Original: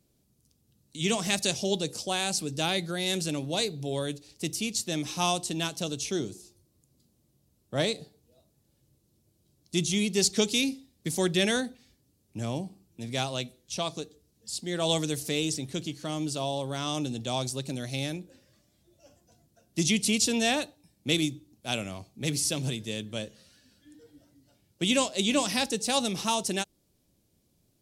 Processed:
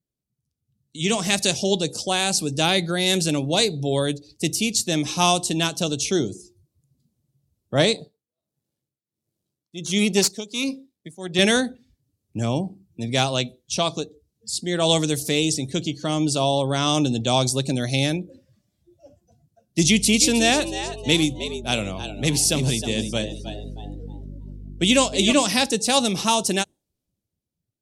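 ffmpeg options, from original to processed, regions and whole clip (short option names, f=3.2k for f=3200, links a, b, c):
-filter_complex "[0:a]asettb=1/sr,asplit=3[a][b][c];[a]atrim=end=7.954[d];[b]atrim=start=7.95:end=11.39,asetpts=PTS-STARTPTS,afade=t=in:d=0.004:c=qsin,afade=t=out:st=3.436:d=0.004:c=qsin,aeval=exprs='if(lt(val(0),0),0.447*val(0),val(0))':c=same,highpass=110,tremolo=f=1.4:d=0.87[e];[c]atrim=start=11.386[f];[d][e]acrossfade=d=0.004:c1=hsin:c2=qsin[g];[g][f]acrossfade=d=0.004:c1=qsin:c2=hsin,asettb=1/sr,asplit=3[h][i][j];[h]atrim=end=19.824[k];[i]atrim=start=19.82:end=25.33,asetpts=PTS-STARTPTS,afade=t=in:d=0.004:c=qsin,afade=t=out:st=5.506:d=0.004:c=qsin,aeval=exprs='val(0)+0.00631*(sin(2*PI*50*n/s)+sin(2*PI*2*50*n/s)/2+sin(2*PI*3*50*n/s)/3+sin(2*PI*4*50*n/s)/4+sin(2*PI*5*50*n/s)/5)':c=same,asplit=5[l][m][n][o][p];[m]adelay=314,afreqshift=95,volume=-11dB[q];[n]adelay=628,afreqshift=190,volume=-18.7dB[r];[o]adelay=942,afreqshift=285,volume=-26.5dB[s];[p]adelay=1256,afreqshift=380,volume=-34.2dB[t];[l][q][r][s][t]amix=inputs=5:normalize=0,atrim=end_sample=242991[u];[j]atrim=start=25.326[v];[k][u]acrossfade=d=0.004:c1=hsin:c2=qsin[w];[w][v]acrossfade=d=0.004:c1=qsin:c2=hsin,afftdn=nr=18:nf=-52,dynaudnorm=f=170:g=11:m=13dB,volume=-1.5dB"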